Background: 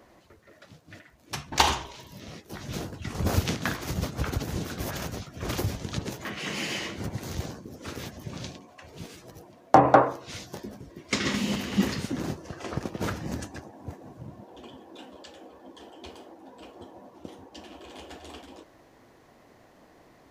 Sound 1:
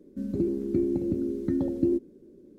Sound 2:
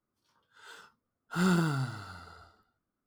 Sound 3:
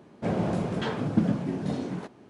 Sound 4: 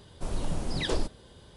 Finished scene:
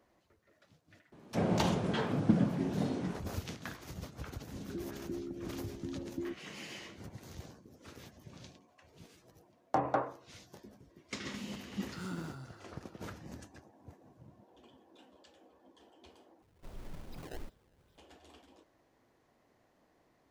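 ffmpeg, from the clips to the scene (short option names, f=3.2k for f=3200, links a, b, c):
-filter_complex "[0:a]volume=-14.5dB[a];[4:a]acrusher=samples=22:mix=1:aa=0.000001:lfo=1:lforange=35.2:lforate=2.5[b];[a]asplit=2[c][d];[c]atrim=end=16.424[e];[b]atrim=end=1.56,asetpts=PTS-STARTPTS,volume=-16dB[f];[d]atrim=start=17.976[g];[3:a]atrim=end=2.29,asetpts=PTS-STARTPTS,volume=-3.5dB,afade=t=in:d=0.004:c=hsin,afade=t=out:st=2.286:d=0.004:c=hsin,adelay=1120[h];[1:a]atrim=end=2.58,asetpts=PTS-STARTPTS,volume=-15dB,afade=t=in:d=0.004:c=hsin,afade=t=out:st=2.576:d=0.004:c=hsin,adelay=4350[i];[2:a]atrim=end=3.06,asetpts=PTS-STARTPTS,volume=-15.5dB,afade=t=in:d=0.004:c=hsin,afade=t=out:st=3.056:d=0.004:c=hsin,adelay=10600[j];[e][f]acrossfade=d=0.004:c1=hsin:c2=hsin[k];[k][g]acrossfade=d=0.004:c1=hsin:c2=hsin[l];[l][h][i][j]amix=inputs=4:normalize=0"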